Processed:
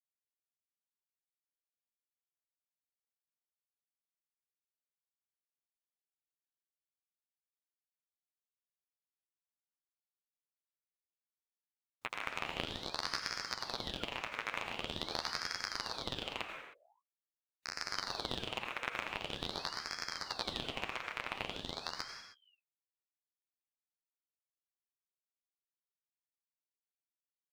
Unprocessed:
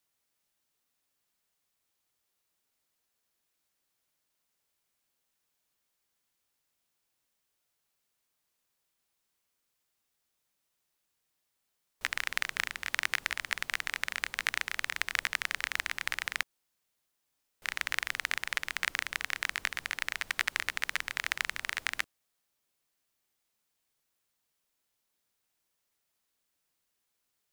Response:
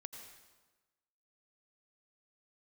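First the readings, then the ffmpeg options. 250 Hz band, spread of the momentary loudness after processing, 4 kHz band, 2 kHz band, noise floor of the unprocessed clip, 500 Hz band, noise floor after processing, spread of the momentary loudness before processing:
+9.0 dB, 6 LU, -2.5 dB, -11.0 dB, -81 dBFS, +7.0 dB, under -85 dBFS, 3 LU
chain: -filter_complex "[0:a]afwtdn=0.00708,agate=range=0.0224:threshold=0.00126:ratio=3:detection=peak,acrossover=split=2700[s0][s1];[s1]acompressor=threshold=0.00447:ratio=4:attack=1:release=60[s2];[s0][s2]amix=inputs=2:normalize=0,equalizer=f=2200:t=o:w=0.86:g=-6.5,dynaudnorm=f=360:g=31:m=2,acrossover=split=190[s3][s4];[s3]adelay=270[s5];[s5][s4]amix=inputs=2:normalize=0,flanger=delay=7.3:depth=5.7:regen=-21:speed=0.43:shape=sinusoidal,acrusher=bits=8:mode=log:mix=0:aa=0.000001,aeval=exprs='clip(val(0),-1,0.0596)':c=same[s6];[1:a]atrim=start_sample=2205,afade=t=out:st=0.37:d=0.01,atrim=end_sample=16758[s7];[s6][s7]afir=irnorm=-1:irlink=0,aeval=exprs='val(0)*sin(2*PI*1900*n/s+1900*0.75/0.45*sin(2*PI*0.45*n/s))':c=same,volume=2"

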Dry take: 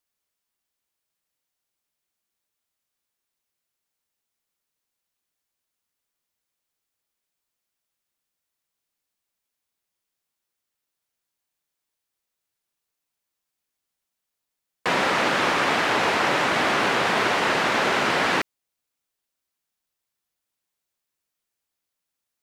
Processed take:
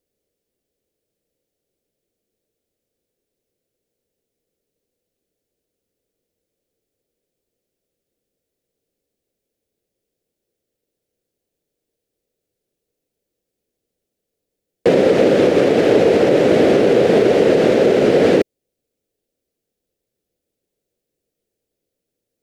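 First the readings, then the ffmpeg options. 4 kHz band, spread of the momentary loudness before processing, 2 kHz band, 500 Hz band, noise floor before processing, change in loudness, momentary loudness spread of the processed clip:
-2.5 dB, 3 LU, -4.5 dB, +15.5 dB, -83 dBFS, +7.5 dB, 3 LU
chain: -af "lowshelf=f=700:t=q:w=3:g=13,alimiter=limit=0.631:level=0:latency=1:release=84"

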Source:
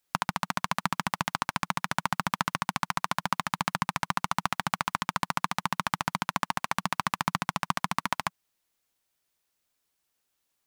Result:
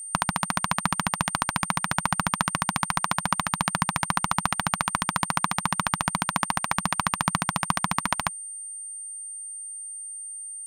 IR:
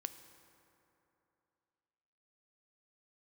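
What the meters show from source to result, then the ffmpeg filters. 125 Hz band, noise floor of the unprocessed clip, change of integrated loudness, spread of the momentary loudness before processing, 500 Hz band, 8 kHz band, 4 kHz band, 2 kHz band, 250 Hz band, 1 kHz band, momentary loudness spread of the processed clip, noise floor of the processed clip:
+6.0 dB, -79 dBFS, +3.5 dB, 2 LU, +3.5 dB, +12.0 dB, +3.5 dB, +3.5 dB, +5.0 dB, +3.5 dB, 9 LU, -37 dBFS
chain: -af "lowshelf=f=81:g=9.5,aeval=exprs='val(0)+0.0126*sin(2*PI*8800*n/s)':c=same,volume=1.5"

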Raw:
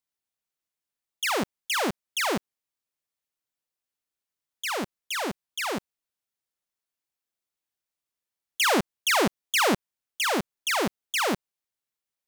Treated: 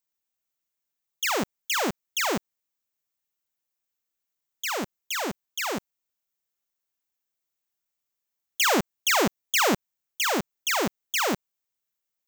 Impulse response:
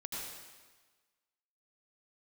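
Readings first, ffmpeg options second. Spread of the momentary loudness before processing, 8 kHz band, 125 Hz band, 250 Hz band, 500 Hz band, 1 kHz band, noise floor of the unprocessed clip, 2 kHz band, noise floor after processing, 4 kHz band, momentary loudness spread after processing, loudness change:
10 LU, +2.5 dB, 0.0 dB, 0.0 dB, 0.0 dB, 0.0 dB, under -85 dBFS, 0.0 dB, -84 dBFS, 0.0 dB, 10 LU, +0.5 dB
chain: -af "aexciter=amount=1.6:drive=1.8:freq=6000"

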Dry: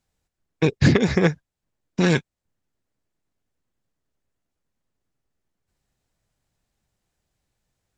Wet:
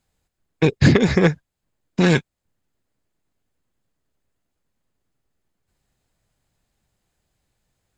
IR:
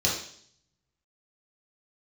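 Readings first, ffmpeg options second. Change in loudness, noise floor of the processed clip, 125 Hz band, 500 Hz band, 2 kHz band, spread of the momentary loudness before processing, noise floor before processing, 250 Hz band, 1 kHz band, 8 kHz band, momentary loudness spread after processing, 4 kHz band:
+2.5 dB, -80 dBFS, +2.5 dB, +2.5 dB, +2.5 dB, 10 LU, -84 dBFS, +3.0 dB, +2.5 dB, no reading, 10 LU, +2.5 dB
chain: -filter_complex "[0:a]bandreject=f=5700:w=12,asplit=2[s0][s1];[s1]asoftclip=type=tanh:threshold=0.106,volume=0.316[s2];[s0][s2]amix=inputs=2:normalize=0,volume=1.19"

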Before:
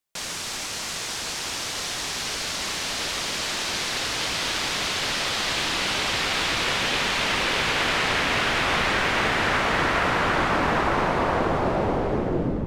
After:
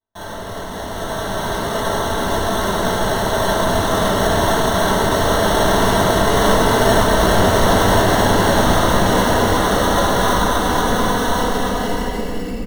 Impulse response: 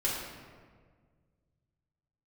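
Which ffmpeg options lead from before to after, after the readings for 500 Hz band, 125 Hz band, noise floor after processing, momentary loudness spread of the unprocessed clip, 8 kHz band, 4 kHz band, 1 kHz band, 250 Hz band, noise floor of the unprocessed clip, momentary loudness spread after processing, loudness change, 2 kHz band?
+12.0 dB, +11.5 dB, -28 dBFS, 6 LU, +4.5 dB, +1.5 dB, +9.0 dB, +11.0 dB, -32 dBFS, 10 LU, +7.0 dB, +2.5 dB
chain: -filter_complex "[0:a]bandreject=f=660:w=12,aecho=1:1:4.2:0.98,dynaudnorm=f=200:g=11:m=2.24,lowpass=f=3200:t=q:w=3.4,acrusher=samples=18:mix=1:aa=0.000001[s0];[1:a]atrim=start_sample=2205,asetrate=79380,aresample=44100[s1];[s0][s1]afir=irnorm=-1:irlink=0,volume=0.447"

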